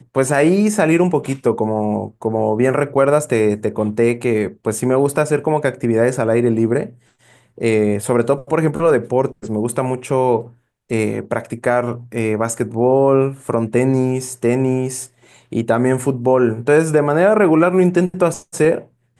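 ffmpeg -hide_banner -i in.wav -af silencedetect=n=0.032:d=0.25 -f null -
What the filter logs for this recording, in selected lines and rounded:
silence_start: 6.89
silence_end: 7.58 | silence_duration: 0.69
silence_start: 10.47
silence_end: 10.91 | silence_duration: 0.44
silence_start: 15.06
silence_end: 15.52 | silence_duration: 0.46
silence_start: 18.81
silence_end: 19.19 | silence_duration: 0.38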